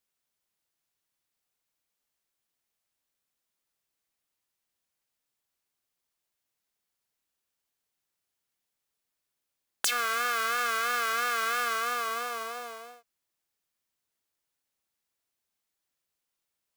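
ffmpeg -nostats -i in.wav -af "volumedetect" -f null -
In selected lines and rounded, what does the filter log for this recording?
mean_volume: -37.4 dB
max_volume: -10.5 dB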